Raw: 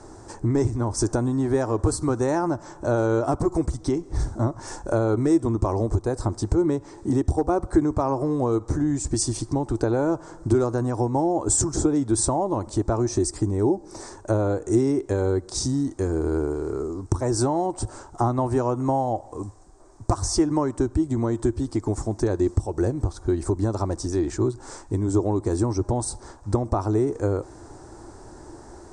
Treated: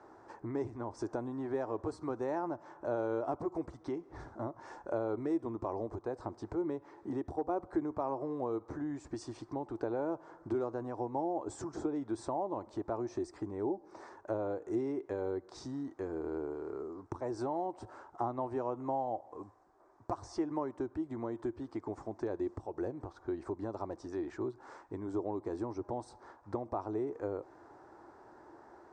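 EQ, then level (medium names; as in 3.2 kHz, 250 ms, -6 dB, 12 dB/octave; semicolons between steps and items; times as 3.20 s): high-pass 860 Hz 6 dB/octave; low-pass 1.9 kHz 12 dB/octave; dynamic bell 1.4 kHz, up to -7 dB, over -46 dBFS, Q 1.2; -4.5 dB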